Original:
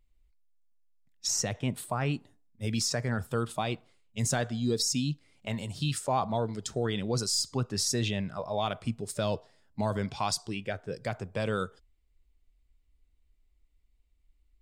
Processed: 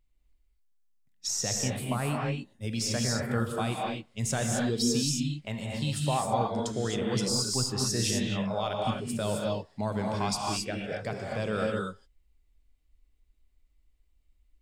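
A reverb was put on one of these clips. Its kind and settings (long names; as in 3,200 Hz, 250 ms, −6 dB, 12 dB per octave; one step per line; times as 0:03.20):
reverb whose tail is shaped and stops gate 290 ms rising, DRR −1 dB
level −2 dB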